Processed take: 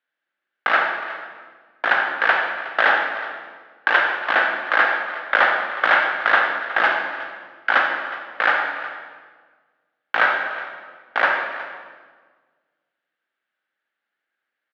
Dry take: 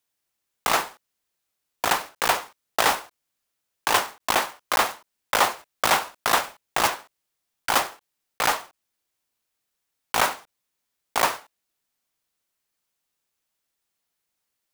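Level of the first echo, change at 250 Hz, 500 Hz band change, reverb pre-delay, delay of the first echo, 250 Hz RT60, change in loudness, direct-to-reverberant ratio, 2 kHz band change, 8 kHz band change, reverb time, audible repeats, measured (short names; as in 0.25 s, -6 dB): -16.0 dB, -0.5 dB, +3.0 dB, 35 ms, 0.366 s, 1.9 s, +4.5 dB, 1.5 dB, +11.0 dB, under -25 dB, 1.5 s, 1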